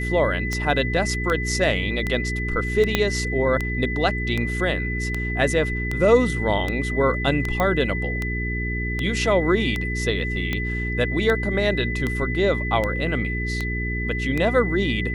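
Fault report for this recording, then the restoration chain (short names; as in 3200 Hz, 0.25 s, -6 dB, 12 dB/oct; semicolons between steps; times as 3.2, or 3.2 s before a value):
hum 60 Hz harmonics 7 -27 dBFS
tick 78 rpm -12 dBFS
tone 2000 Hz -28 dBFS
2.95 pop -4 dBFS
7.6 pop -10 dBFS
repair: de-click; notch 2000 Hz, Q 30; de-hum 60 Hz, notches 7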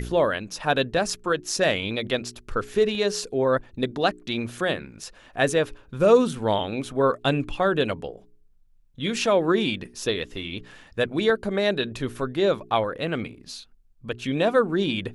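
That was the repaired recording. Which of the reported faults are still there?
2.95 pop
7.6 pop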